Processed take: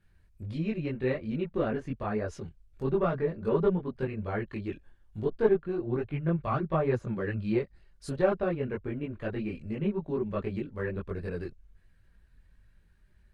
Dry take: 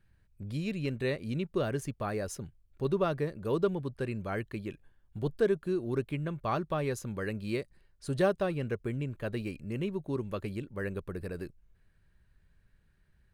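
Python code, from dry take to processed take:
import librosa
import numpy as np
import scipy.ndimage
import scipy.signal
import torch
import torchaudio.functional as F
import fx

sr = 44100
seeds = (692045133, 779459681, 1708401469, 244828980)

y = fx.diode_clip(x, sr, knee_db=-18.5)
y = fx.env_lowpass_down(y, sr, base_hz=2200.0, full_db=-31.0)
y = fx.chorus_voices(y, sr, voices=6, hz=1.2, base_ms=21, depth_ms=3.0, mix_pct=55)
y = F.gain(torch.from_numpy(y), 5.5).numpy()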